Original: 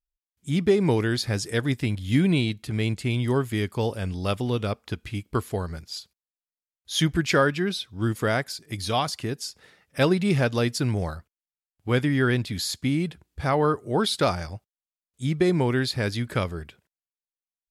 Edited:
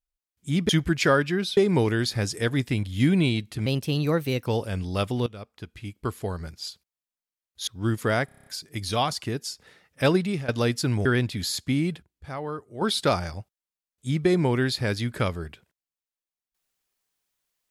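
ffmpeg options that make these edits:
-filter_complex "[0:a]asplit=18[s0][s1][s2][s3][s4][s5][s6][s7][s8][s9][s10][s11][s12][s13][s14][s15][s16][s17];[s0]atrim=end=0.692[s18];[s1]atrim=start=6.968:end=7.852[s19];[s2]atrim=start=0.688:end=2.784[s20];[s3]atrim=start=2.78:end=3.76,asetpts=PTS-STARTPTS,asetrate=53802,aresample=44100[s21];[s4]atrim=start=3.756:end=4.56,asetpts=PTS-STARTPTS,afade=t=out:st=0.8:d=0.004:c=hsin:silence=0.158489[s22];[s5]atrim=start=4.56:end=6.972,asetpts=PTS-STARTPTS,afade=t=in:d=1.35:silence=0.158489[s23];[s6]atrim=start=7.848:end=8.462[s24];[s7]atrim=start=8.428:end=8.462[s25];[s8]atrim=start=8.428:end=8.462[s26];[s9]atrim=start=8.428:end=8.462[s27];[s10]atrim=start=8.428:end=8.462[s28];[s11]atrim=start=8.428:end=8.462[s29];[s12]atrim=start=8.428:end=8.462[s30];[s13]atrim=start=8.428:end=10.45,asetpts=PTS-STARTPTS,afade=t=out:st=1.692:d=0.33:silence=0.125893[s31];[s14]atrim=start=10.45:end=11.022,asetpts=PTS-STARTPTS,afade=t=in:d=0.004:c=hsin:silence=0.125893[s32];[s15]atrim=start=12.208:end=13.18,asetpts=PTS-STARTPTS,afade=t=out:st=0.752:d=0.22:c=log:silence=0.281838[s33];[s16]atrim=start=13.18:end=13.97,asetpts=PTS-STARTPTS,volume=0.282[s34];[s17]atrim=start=13.97,asetpts=PTS-STARTPTS,afade=t=in:d=0.22:c=log:silence=0.281838[s35];[s18][s19]acrossfade=d=0.004:c1=hsin:c2=hsin[s36];[s36][s20]acrossfade=d=0.004:c1=hsin:c2=hsin[s37];[s37][s21]acrossfade=d=0.004:c1=hsin:c2=hsin[s38];[s22][s23]concat=n=2:v=0:a=1[s39];[s38][s39]acrossfade=d=0.004:c1=hsin:c2=hsin[s40];[s40][s24]acrossfade=d=0.004:c1=hsin:c2=hsin[s41];[s41][s25]acrossfade=d=0.004:c1=hsin:c2=hsin[s42];[s42][s26]acrossfade=d=0.004:c1=hsin:c2=hsin[s43];[s43][s27]acrossfade=d=0.004:c1=hsin:c2=hsin[s44];[s44][s28]acrossfade=d=0.004:c1=hsin:c2=hsin[s45];[s45][s29]acrossfade=d=0.004:c1=hsin:c2=hsin[s46];[s46][s30]acrossfade=d=0.004:c1=hsin:c2=hsin[s47];[s31][s32]concat=n=2:v=0:a=1[s48];[s47][s48]acrossfade=d=0.004:c1=hsin:c2=hsin[s49];[s33][s34][s35]concat=n=3:v=0:a=1[s50];[s49][s50]acrossfade=d=0.004:c1=hsin:c2=hsin"

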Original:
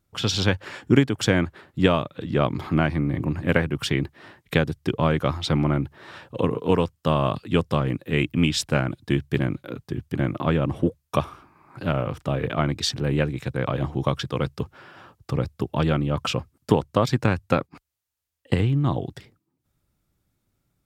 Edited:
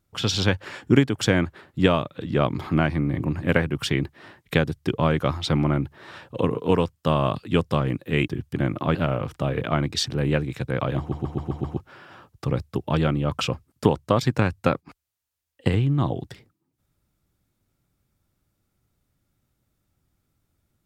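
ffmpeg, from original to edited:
-filter_complex "[0:a]asplit=9[s0][s1][s2][s3][s4][s5][s6][s7][s8];[s0]atrim=end=8.282[s9];[s1]atrim=start=9.868:end=10.542[s10];[s2]atrim=start=11.808:end=13.982[s11];[s3]atrim=start=13.848:end=13.982[s12];[s4]atrim=start=13.848:end=13.982[s13];[s5]atrim=start=13.848:end=13.982[s14];[s6]atrim=start=13.848:end=13.982[s15];[s7]atrim=start=13.848:end=13.982[s16];[s8]atrim=start=14.628[s17];[s9][s10]acrossfade=d=0.004:c1=hsin:c2=hsin[s18];[s18][s11]acrossfade=d=0.004:c1=hsin:c2=hsin[s19];[s19][s12]acrossfade=d=0.004:c1=hsin:c2=hsin[s20];[s20][s13]acrossfade=d=0.004:c1=hsin:c2=hsin[s21];[s21][s14]acrossfade=d=0.004:c1=hsin:c2=hsin[s22];[s22][s15]acrossfade=d=0.004:c1=hsin:c2=hsin[s23];[s23][s16]acrossfade=d=0.004:c1=hsin:c2=hsin[s24];[s24][s17]acrossfade=d=0.004:c1=hsin:c2=hsin"

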